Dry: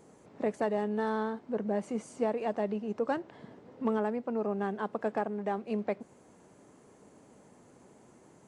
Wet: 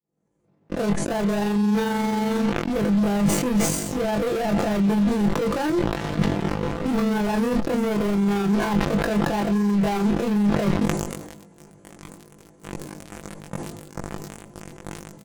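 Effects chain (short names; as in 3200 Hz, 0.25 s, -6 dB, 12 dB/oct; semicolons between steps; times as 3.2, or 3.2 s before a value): opening faded in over 1.62 s; in parallel at -4 dB: fuzz box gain 53 dB, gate -50 dBFS; on the sum: granular stretch 1.8×, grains 89 ms; comb 5.9 ms, depth 43%; reverse; compressor, threshold -26 dBFS, peak gain reduction 11.5 dB; reverse; low shelf 310 Hz +11.5 dB; sustainer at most 47 dB/s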